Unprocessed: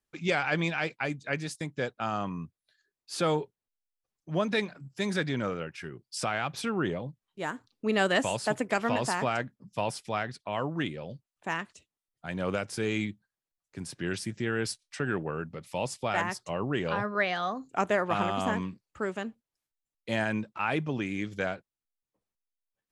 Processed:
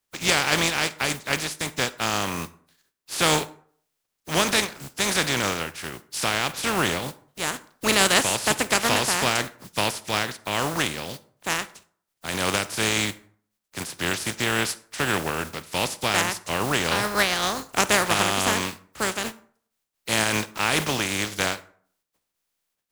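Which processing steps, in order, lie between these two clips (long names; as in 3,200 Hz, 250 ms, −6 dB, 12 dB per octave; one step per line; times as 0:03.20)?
compressing power law on the bin magnitudes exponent 0.36
on a send: convolution reverb RT60 0.55 s, pre-delay 38 ms, DRR 17 dB
on the sum: level +6.5 dB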